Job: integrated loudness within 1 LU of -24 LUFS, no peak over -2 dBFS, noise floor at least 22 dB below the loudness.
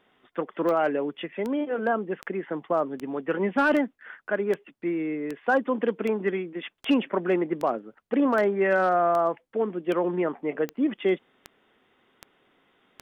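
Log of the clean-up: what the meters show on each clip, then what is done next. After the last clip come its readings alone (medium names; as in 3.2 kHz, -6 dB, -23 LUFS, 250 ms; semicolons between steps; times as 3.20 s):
clicks found 17; loudness -26.5 LUFS; peak level -11.0 dBFS; loudness target -24.0 LUFS
-> de-click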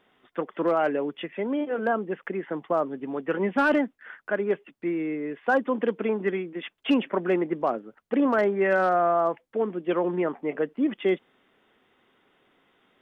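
clicks found 0; loudness -26.5 LUFS; peak level -14.0 dBFS; loudness target -24.0 LUFS
-> trim +2.5 dB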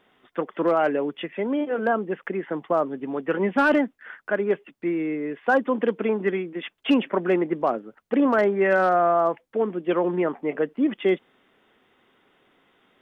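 loudness -24.0 LUFS; peak level -11.5 dBFS; noise floor -65 dBFS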